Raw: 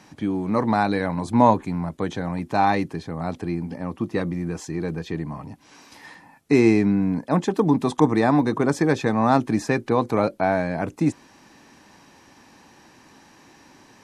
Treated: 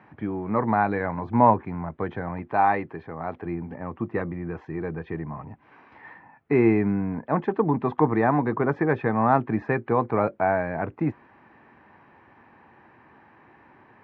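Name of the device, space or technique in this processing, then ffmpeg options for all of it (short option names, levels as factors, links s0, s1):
bass cabinet: -filter_complex "[0:a]asettb=1/sr,asplit=3[s0][s1][s2];[s0]atrim=end=2.424[s3];[s1]atrim=start=2.42:end=3.46,asetpts=PTS-STARTPTS,afade=t=in:d=0.004:c=qsin,afade=t=out:st=1.036:d=0.004:c=qsin,bass=f=250:g=-6,treble=f=4000:g=3[s4];[s2]atrim=start=3.456[s5];[s3][s4]acrossfade=d=0.004:c1=hsin:c2=qsin[s6];[s6][s5]acrossfade=d=0.004:c1=qsin:c2=hsin,highpass=64,equalizer=f=180:t=q:w=4:g=-6,equalizer=f=280:t=q:w=4:g=-7,equalizer=f=540:t=q:w=4:g=-3,lowpass=f=2100:w=0.5412,lowpass=f=2100:w=1.3066"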